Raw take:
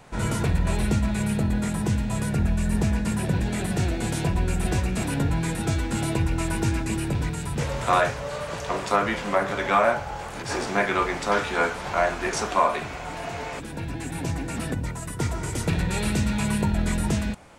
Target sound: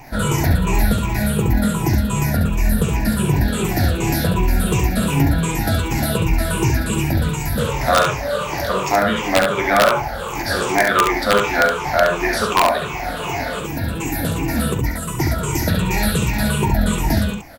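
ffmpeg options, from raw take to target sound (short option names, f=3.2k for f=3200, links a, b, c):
-filter_complex "[0:a]afftfilt=real='re*pow(10,16/40*sin(2*PI*(0.72*log(max(b,1)*sr/1024/100)/log(2)-(-2.7)*(pts-256)/sr)))':imag='im*pow(10,16/40*sin(2*PI*(0.72*log(max(b,1)*sr/1024/100)/log(2)-(-2.7)*(pts-256)/sr)))':win_size=1024:overlap=0.75,asplit=2[a][b];[b]alimiter=limit=-17dB:level=0:latency=1:release=484,volume=-1dB[c];[a][c]amix=inputs=2:normalize=0,aexciter=amount=9.3:drive=4.8:freq=12k,aeval=exprs='(mod(1.78*val(0)+1,2)-1)/1.78':c=same,asplit=2[d][e];[e]aecho=0:1:41|69:0.2|0.562[f];[d][f]amix=inputs=2:normalize=0,adynamicequalizer=threshold=0.0141:dfrequency=7500:dqfactor=0.7:tfrequency=7500:tqfactor=0.7:attack=5:release=100:ratio=0.375:range=1.5:mode=cutabove:tftype=highshelf"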